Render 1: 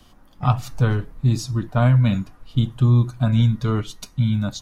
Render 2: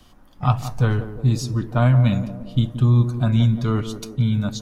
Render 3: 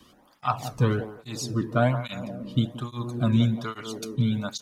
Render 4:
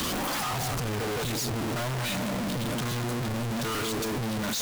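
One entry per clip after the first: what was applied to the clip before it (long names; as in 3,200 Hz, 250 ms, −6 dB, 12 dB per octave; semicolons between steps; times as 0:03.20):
feedback echo with a band-pass in the loop 175 ms, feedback 68%, band-pass 390 Hz, level −8 dB
through-zero flanger with one copy inverted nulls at 1.2 Hz, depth 1.5 ms; level +1.5 dB
sign of each sample alone; level −3 dB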